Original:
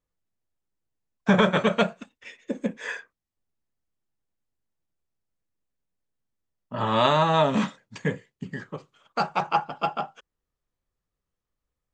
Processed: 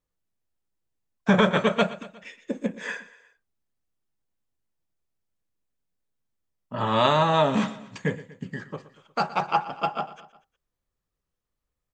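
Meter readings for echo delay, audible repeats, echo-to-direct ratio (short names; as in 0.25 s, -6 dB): 0.12 s, 3, -15.5 dB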